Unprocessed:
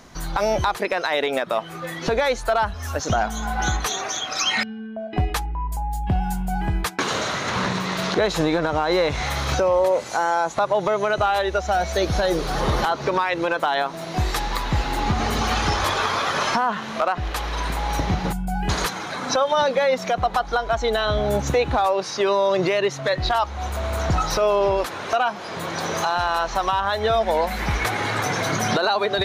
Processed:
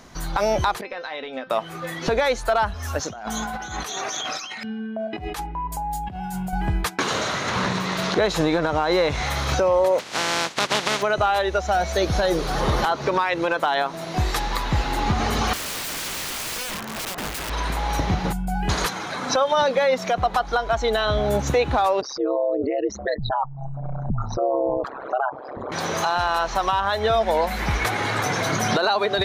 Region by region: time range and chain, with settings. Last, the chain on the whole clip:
0.81–1.5 LPF 5000 Hz 24 dB/oct + resonator 260 Hz, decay 0.2 s, mix 80%
3.07–6.53 HPF 100 Hz + negative-ratio compressor -30 dBFS
9.98–11.01 spectral contrast lowered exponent 0.24 + BPF 130–5000 Hz
15.53–17.5 HPF 48 Hz + bell 3900 Hz -9.5 dB 1.3 oct + wrapped overs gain 25 dB
22.01–25.72 formant sharpening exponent 3 + LPF 12000 Hz + ring modulator 67 Hz
whole clip: dry

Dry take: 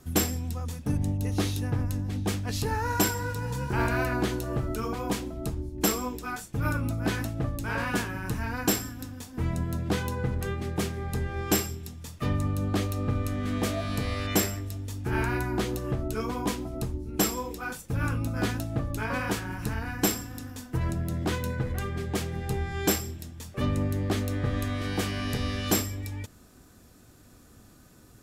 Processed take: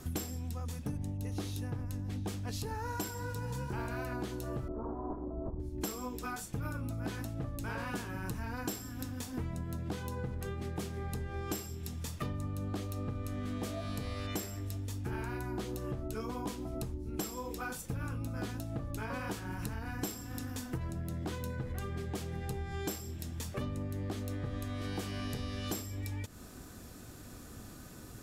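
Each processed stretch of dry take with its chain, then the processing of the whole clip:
4.68–5.6 minimum comb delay 3 ms + steep low-pass 1100 Hz
whole clip: dynamic EQ 2000 Hz, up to -4 dB, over -44 dBFS, Q 1.2; compressor 6:1, threshold -41 dBFS; gain +5 dB

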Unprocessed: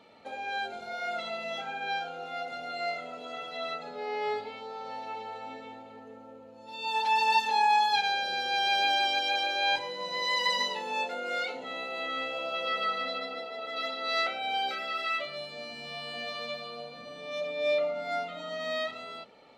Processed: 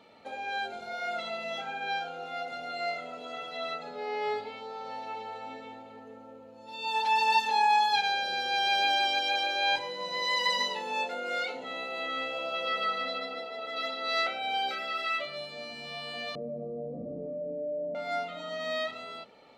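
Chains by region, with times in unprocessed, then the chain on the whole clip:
16.35–17.95 inverse Chebyshev low-pass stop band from 1300 Hz, stop band 50 dB + fast leveller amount 70%
whole clip: dry

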